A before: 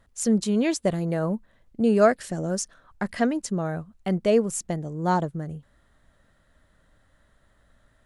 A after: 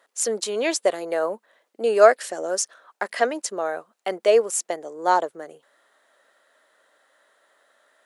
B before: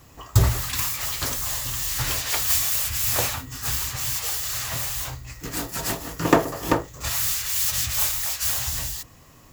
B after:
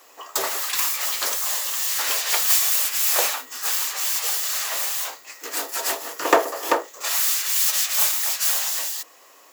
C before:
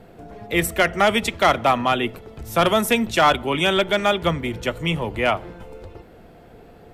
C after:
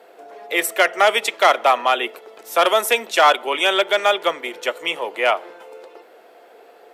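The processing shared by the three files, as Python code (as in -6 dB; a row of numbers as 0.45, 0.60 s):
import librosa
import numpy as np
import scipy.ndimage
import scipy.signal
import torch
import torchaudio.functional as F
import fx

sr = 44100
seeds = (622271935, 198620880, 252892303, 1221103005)

y = scipy.signal.sosfilt(scipy.signal.butter(4, 420.0, 'highpass', fs=sr, output='sos'), x)
y = librosa.util.normalize(y) * 10.0 ** (-1.5 / 20.0)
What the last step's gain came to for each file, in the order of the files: +5.5, +3.5, +2.5 dB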